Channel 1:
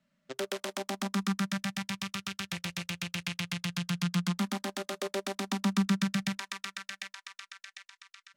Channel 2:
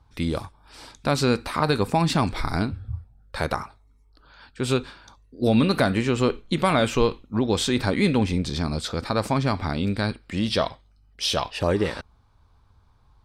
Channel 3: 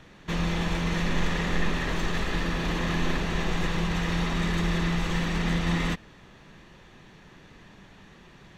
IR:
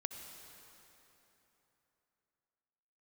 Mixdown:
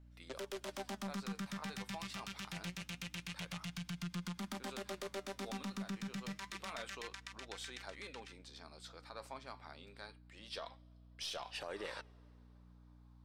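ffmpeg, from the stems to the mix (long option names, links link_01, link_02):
-filter_complex "[0:a]volume=1.5dB,asplit=2[link_01][link_02];[link_02]volume=-22dB[link_03];[1:a]highpass=580,volume=-4.5dB,afade=type=in:start_time=10.43:duration=0.8:silence=0.251189,asplit=2[link_04][link_05];[link_05]volume=-23.5dB[link_06];[link_01][link_04]amix=inputs=2:normalize=0,aeval=exprs='val(0)+0.00224*(sin(2*PI*60*n/s)+sin(2*PI*2*60*n/s)/2+sin(2*PI*3*60*n/s)/3+sin(2*PI*4*60*n/s)/4+sin(2*PI*5*60*n/s)/5)':channel_layout=same,acompressor=threshold=-31dB:ratio=6,volume=0dB[link_07];[3:a]atrim=start_sample=2205[link_08];[link_03][link_06]amix=inputs=2:normalize=0[link_09];[link_09][link_08]afir=irnorm=-1:irlink=0[link_10];[link_07][link_10]amix=inputs=2:normalize=0,flanger=delay=1.3:depth=6.6:regen=76:speed=0.26:shape=sinusoidal,aeval=exprs='(tanh(22.4*val(0)+0.35)-tanh(0.35))/22.4':channel_layout=same,alimiter=level_in=9dB:limit=-24dB:level=0:latency=1:release=28,volume=-9dB"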